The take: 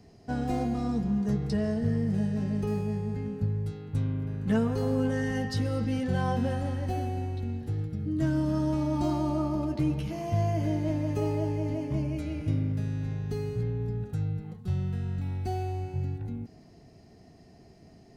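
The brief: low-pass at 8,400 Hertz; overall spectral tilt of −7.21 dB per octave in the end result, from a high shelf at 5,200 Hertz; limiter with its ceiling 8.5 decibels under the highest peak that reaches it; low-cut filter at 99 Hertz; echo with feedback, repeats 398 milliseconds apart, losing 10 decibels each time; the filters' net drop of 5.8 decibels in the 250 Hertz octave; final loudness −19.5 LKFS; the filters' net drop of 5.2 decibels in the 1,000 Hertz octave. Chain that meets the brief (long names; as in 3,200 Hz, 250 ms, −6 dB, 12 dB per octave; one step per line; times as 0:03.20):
high-pass filter 99 Hz
low-pass filter 8,400 Hz
parametric band 250 Hz −7 dB
parametric band 1,000 Hz −7.5 dB
high-shelf EQ 5,200 Hz +6.5 dB
brickwall limiter −28 dBFS
repeating echo 398 ms, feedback 32%, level −10 dB
level +17 dB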